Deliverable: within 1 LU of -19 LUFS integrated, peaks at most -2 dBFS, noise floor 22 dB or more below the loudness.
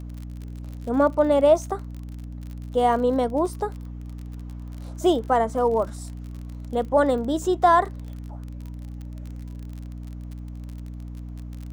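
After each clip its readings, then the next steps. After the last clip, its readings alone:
tick rate 41 per s; hum 60 Hz; highest harmonic 300 Hz; hum level -33 dBFS; loudness -22.0 LUFS; peak level -6.5 dBFS; loudness target -19.0 LUFS
-> de-click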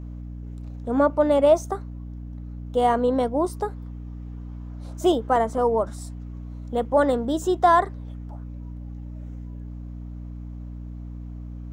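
tick rate 0 per s; hum 60 Hz; highest harmonic 300 Hz; hum level -33 dBFS
-> hum notches 60/120/180/240/300 Hz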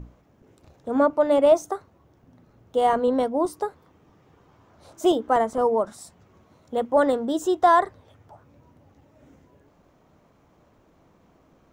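hum not found; loudness -22.5 LUFS; peak level -7.0 dBFS; loudness target -19.0 LUFS
-> trim +3.5 dB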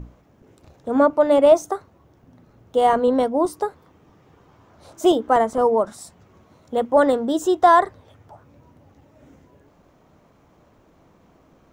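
loudness -19.0 LUFS; peak level -3.5 dBFS; noise floor -57 dBFS

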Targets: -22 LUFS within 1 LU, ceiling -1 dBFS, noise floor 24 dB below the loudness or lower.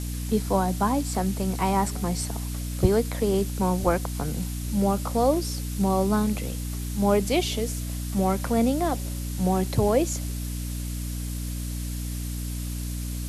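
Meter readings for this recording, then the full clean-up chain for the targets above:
hum 60 Hz; highest harmonic 300 Hz; hum level -29 dBFS; noise floor -31 dBFS; noise floor target -51 dBFS; loudness -26.5 LUFS; peak level -6.0 dBFS; loudness target -22.0 LUFS
-> hum notches 60/120/180/240/300 Hz; noise reduction 20 dB, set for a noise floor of -31 dBFS; trim +4.5 dB

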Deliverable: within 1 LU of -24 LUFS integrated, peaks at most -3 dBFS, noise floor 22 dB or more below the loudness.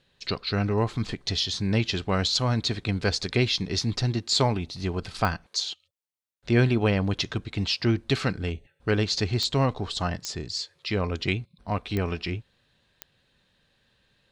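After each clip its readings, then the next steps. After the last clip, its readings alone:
clicks found 5; loudness -27.0 LUFS; peak level -8.0 dBFS; loudness target -24.0 LUFS
-> de-click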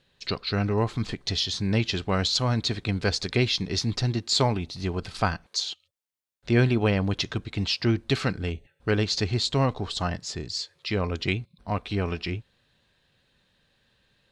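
clicks found 0; loudness -27.0 LUFS; peak level -8.0 dBFS; loudness target -24.0 LUFS
-> trim +3 dB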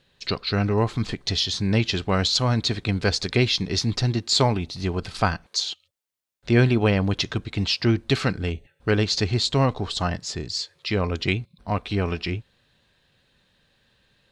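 loudness -24.0 LUFS; peak level -5.0 dBFS; noise floor -67 dBFS

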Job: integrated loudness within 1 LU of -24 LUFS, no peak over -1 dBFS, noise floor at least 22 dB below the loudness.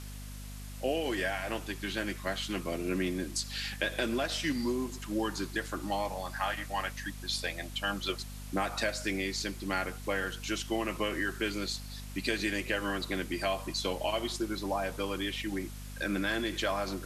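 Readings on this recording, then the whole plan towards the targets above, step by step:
hum 50 Hz; highest harmonic 250 Hz; hum level -41 dBFS; noise floor -43 dBFS; noise floor target -56 dBFS; loudness -33.5 LUFS; peak level -17.0 dBFS; loudness target -24.0 LUFS
-> de-hum 50 Hz, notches 5; noise reduction 13 dB, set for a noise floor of -43 dBFS; trim +9.5 dB

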